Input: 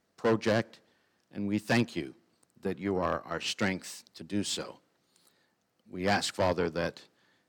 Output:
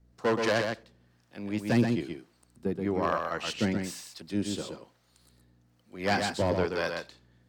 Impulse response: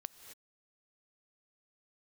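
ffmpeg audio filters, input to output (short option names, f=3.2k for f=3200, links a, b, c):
-filter_complex "[0:a]aeval=exprs='val(0)+0.000631*(sin(2*PI*60*n/s)+sin(2*PI*2*60*n/s)/2+sin(2*PI*3*60*n/s)/3+sin(2*PI*4*60*n/s)/4+sin(2*PI*5*60*n/s)/5)':c=same,acrossover=split=520[a][b];[a]aeval=exprs='val(0)*(1-0.7/2+0.7/2*cos(2*PI*1.1*n/s))':c=same[c];[b]aeval=exprs='val(0)*(1-0.7/2-0.7/2*cos(2*PI*1.1*n/s))':c=same[d];[c][d]amix=inputs=2:normalize=0,asplit=2[e][f];[1:a]atrim=start_sample=2205,atrim=end_sample=4410,adelay=126[g];[f][g]afir=irnorm=-1:irlink=0,volume=-0.5dB[h];[e][h]amix=inputs=2:normalize=0,volume=4dB"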